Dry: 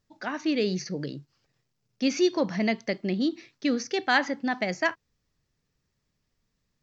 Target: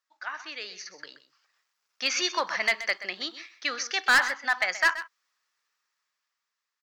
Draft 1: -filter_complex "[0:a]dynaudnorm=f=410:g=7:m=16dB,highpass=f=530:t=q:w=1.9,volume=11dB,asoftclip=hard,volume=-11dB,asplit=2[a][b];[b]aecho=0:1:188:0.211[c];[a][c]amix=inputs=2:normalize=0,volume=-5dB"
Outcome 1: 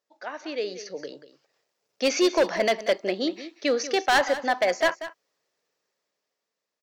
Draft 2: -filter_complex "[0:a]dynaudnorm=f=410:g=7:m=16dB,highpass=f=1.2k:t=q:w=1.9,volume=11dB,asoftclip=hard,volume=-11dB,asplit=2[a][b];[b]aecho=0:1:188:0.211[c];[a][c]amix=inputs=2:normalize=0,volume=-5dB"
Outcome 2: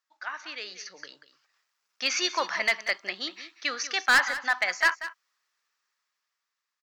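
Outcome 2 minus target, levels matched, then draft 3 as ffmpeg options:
echo 60 ms late
-filter_complex "[0:a]dynaudnorm=f=410:g=7:m=16dB,highpass=f=1.2k:t=q:w=1.9,volume=11dB,asoftclip=hard,volume=-11dB,asplit=2[a][b];[b]aecho=0:1:128:0.211[c];[a][c]amix=inputs=2:normalize=0,volume=-5dB"

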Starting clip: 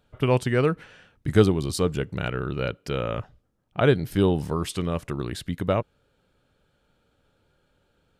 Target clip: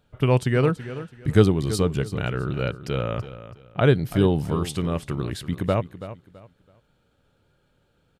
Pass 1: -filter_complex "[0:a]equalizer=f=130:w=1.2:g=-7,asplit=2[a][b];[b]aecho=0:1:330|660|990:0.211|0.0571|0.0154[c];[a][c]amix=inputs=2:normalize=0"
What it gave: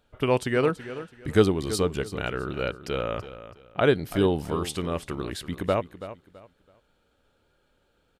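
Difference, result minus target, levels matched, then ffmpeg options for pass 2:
125 Hz band -6.0 dB
-filter_complex "[0:a]equalizer=f=130:w=1.2:g=4,asplit=2[a][b];[b]aecho=0:1:330|660|990:0.211|0.0571|0.0154[c];[a][c]amix=inputs=2:normalize=0"

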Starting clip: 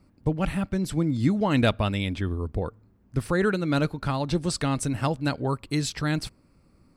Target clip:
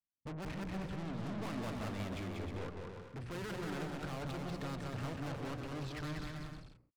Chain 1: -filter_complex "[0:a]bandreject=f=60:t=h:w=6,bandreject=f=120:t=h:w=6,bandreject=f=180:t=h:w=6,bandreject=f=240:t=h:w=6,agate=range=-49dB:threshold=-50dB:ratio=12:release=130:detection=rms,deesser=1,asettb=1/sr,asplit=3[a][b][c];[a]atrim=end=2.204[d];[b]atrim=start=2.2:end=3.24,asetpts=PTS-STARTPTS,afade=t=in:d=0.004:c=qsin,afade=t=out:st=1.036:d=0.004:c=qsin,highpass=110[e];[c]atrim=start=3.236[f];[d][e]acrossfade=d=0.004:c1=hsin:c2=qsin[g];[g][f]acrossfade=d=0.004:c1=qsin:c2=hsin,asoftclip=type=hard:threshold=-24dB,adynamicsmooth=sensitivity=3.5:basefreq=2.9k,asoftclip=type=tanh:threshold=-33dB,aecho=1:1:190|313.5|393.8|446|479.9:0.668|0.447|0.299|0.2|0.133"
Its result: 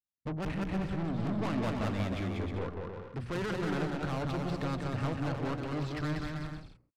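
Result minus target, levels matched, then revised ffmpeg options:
soft clip: distortion -5 dB
-filter_complex "[0:a]bandreject=f=60:t=h:w=6,bandreject=f=120:t=h:w=6,bandreject=f=180:t=h:w=6,bandreject=f=240:t=h:w=6,agate=range=-49dB:threshold=-50dB:ratio=12:release=130:detection=rms,deesser=1,asettb=1/sr,asplit=3[a][b][c];[a]atrim=end=2.204[d];[b]atrim=start=2.2:end=3.24,asetpts=PTS-STARTPTS,afade=t=in:d=0.004:c=qsin,afade=t=out:st=1.036:d=0.004:c=qsin,highpass=110[e];[c]atrim=start=3.236[f];[d][e]acrossfade=d=0.004:c1=hsin:c2=qsin[g];[g][f]acrossfade=d=0.004:c1=qsin:c2=hsin,asoftclip=type=hard:threshold=-24dB,adynamicsmooth=sensitivity=3.5:basefreq=2.9k,asoftclip=type=tanh:threshold=-42dB,aecho=1:1:190|313.5|393.8|446|479.9:0.668|0.447|0.299|0.2|0.133"

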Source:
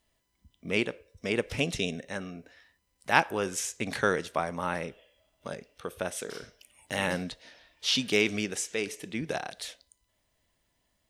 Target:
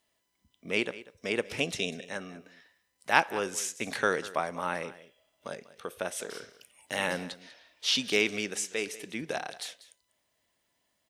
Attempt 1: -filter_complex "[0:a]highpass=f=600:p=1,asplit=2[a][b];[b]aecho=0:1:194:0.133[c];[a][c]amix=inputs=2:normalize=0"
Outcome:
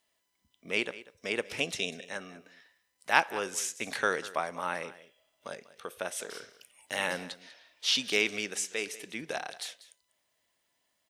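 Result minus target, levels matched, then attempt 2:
250 Hz band -3.5 dB
-filter_complex "[0:a]highpass=f=290:p=1,asplit=2[a][b];[b]aecho=0:1:194:0.133[c];[a][c]amix=inputs=2:normalize=0"

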